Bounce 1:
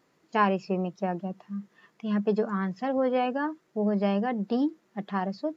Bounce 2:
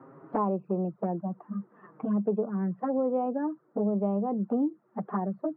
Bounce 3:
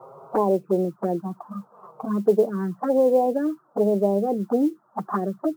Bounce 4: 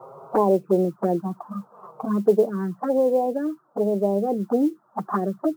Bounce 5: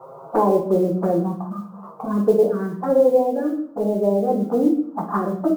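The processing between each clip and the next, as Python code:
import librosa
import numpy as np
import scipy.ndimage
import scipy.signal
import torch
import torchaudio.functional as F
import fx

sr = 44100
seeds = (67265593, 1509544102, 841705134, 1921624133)

y1 = fx.env_flanger(x, sr, rest_ms=7.6, full_db=-23.5)
y1 = scipy.signal.sosfilt(scipy.signal.ellip(3, 1.0, 60, [120.0, 1300.0], 'bandpass', fs=sr, output='sos'), y1)
y1 = fx.band_squash(y1, sr, depth_pct=70)
y2 = fx.band_shelf(y1, sr, hz=710.0, db=9.5, octaves=2.5)
y2 = fx.env_phaser(y2, sr, low_hz=270.0, high_hz=1300.0, full_db=-17.0)
y2 = fx.mod_noise(y2, sr, seeds[0], snr_db=33)
y2 = y2 * 10.0 ** (3.0 / 20.0)
y3 = fx.rider(y2, sr, range_db=10, speed_s=2.0)
y3 = y3 * 10.0 ** (-1.5 / 20.0)
y4 = fx.room_shoebox(y3, sr, seeds[1], volume_m3=100.0, walls='mixed', distance_m=0.77)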